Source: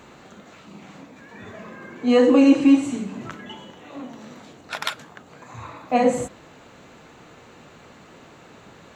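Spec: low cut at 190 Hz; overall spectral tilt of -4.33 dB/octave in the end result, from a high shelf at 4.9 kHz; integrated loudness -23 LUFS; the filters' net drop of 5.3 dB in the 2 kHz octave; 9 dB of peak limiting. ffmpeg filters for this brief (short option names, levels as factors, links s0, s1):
-af "highpass=190,equalizer=f=2000:t=o:g=-6,highshelf=f=4900:g=-5,volume=1.5,alimiter=limit=0.266:level=0:latency=1"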